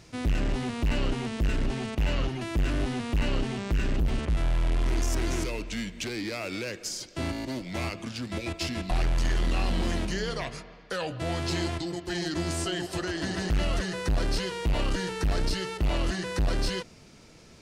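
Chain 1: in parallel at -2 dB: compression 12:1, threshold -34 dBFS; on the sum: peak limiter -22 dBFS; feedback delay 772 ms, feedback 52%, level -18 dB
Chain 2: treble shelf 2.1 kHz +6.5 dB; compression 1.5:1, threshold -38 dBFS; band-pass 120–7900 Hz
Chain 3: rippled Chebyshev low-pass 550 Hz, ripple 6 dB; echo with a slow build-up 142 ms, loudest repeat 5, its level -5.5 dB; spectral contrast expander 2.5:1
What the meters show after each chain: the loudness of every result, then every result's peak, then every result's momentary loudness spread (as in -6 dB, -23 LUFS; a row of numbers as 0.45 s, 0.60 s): -30.0 LUFS, -35.0 LUFS, -36.5 LUFS; -20.0 dBFS, -20.0 dBFS, -14.0 dBFS; 4 LU, 4 LU, 20 LU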